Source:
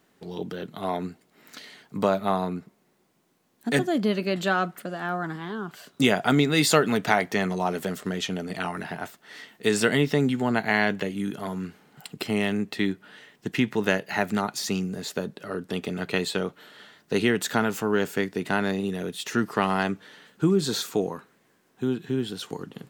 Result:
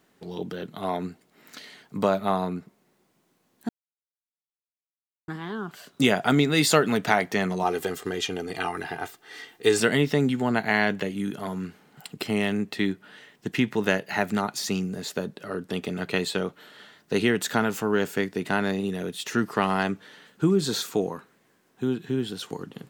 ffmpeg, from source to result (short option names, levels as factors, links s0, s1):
-filter_complex "[0:a]asettb=1/sr,asplit=3[s0][s1][s2];[s0]atrim=end=7.634[s3];[s1]atrim=start=7.63:end=9.8,asetpts=PTS-STARTPTS,afade=t=in:d=0.004:c=qsin,afade=t=out:st=2.166:d=0.004:c=qsin,aecho=1:1:2.5:0.64,atrim=end_sample=95697[s4];[s2]atrim=start=9.796[s5];[s3][s4]acrossfade=d=0.004:c1=hsin:c2=qsin[s6];[s6][s5]acrossfade=d=0.004:c1=qsin:c2=hsin,asplit=3[s7][s8][s9];[s7]atrim=end=3.69,asetpts=PTS-STARTPTS,afade=t=out:st=3.686:d=0.004:c=hsin[s10];[s8]atrim=start=3.69:end=5.28,asetpts=PTS-STARTPTS,volume=0[s11];[s9]atrim=start=5.28,asetpts=PTS-STARTPTS,afade=t=in:d=0.004:c=hsin[s12];[s10][s11][s12]concat=n=3:v=0:a=1"